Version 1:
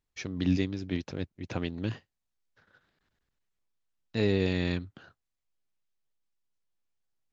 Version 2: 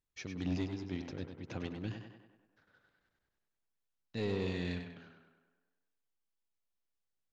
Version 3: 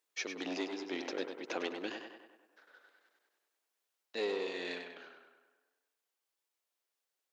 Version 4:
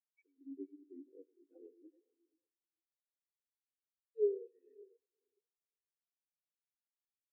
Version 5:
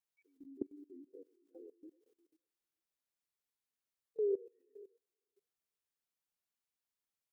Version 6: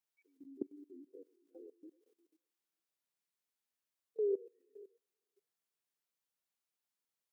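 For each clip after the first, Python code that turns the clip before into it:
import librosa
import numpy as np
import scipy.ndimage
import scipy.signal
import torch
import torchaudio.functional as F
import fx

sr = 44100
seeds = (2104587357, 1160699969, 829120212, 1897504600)

y1 = 10.0 ** (-21.0 / 20.0) * np.tanh(x / 10.0 ** (-21.0 / 20.0))
y1 = fx.echo_tape(y1, sr, ms=99, feedback_pct=62, wet_db=-4.0, lp_hz=3800.0, drive_db=27.0, wow_cents=35)
y1 = y1 * librosa.db_to_amplitude(-6.5)
y2 = scipy.signal.sosfilt(scipy.signal.butter(4, 360.0, 'highpass', fs=sr, output='sos'), y1)
y2 = fx.rider(y2, sr, range_db=10, speed_s=0.5)
y2 = y2 * librosa.db_to_amplitude(5.5)
y3 = fx.peak_eq(y2, sr, hz=62.0, db=13.5, octaves=2.5)
y3 = fx.echo_diffused(y3, sr, ms=476, feedback_pct=48, wet_db=-5.5)
y3 = fx.spectral_expand(y3, sr, expansion=4.0)
y3 = y3 * librosa.db_to_amplitude(-1.5)
y4 = fx.level_steps(y3, sr, step_db=21)
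y4 = y4 * librosa.db_to_amplitude(10.5)
y5 = scipy.signal.sosfilt(scipy.signal.butter(2, 140.0, 'highpass', fs=sr, output='sos'), y4)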